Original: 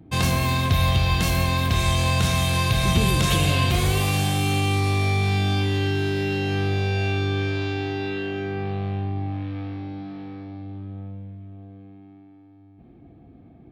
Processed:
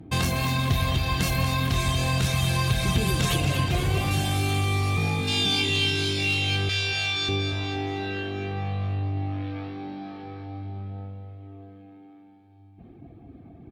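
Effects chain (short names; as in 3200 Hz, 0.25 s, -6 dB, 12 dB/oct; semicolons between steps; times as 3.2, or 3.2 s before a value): 6.69–7.29 weighting filter ITU-R 468; reverb removal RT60 1.2 s; 3.4–4.11 high shelf 4000 Hz -8.5 dB; 5.28–6.57 spectral gain 2100–11000 Hz +12 dB; in parallel at +3 dB: compressor 12:1, threshold -31 dBFS, peak gain reduction 16 dB; 4.97–5.46 on the sum: frequency shift +61 Hz; one-sided clip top -15.5 dBFS; feedback echo 0.236 s, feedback 56%, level -8 dB; on a send at -12 dB: reverb RT60 2.9 s, pre-delay 3 ms; on the sum: gain -4 dB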